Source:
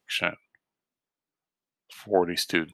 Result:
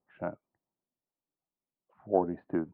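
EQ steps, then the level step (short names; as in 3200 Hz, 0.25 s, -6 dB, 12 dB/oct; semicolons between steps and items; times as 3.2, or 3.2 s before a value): LPF 1000 Hz 24 dB/oct; air absorption 130 m; notch 440 Hz, Q 12; -2.5 dB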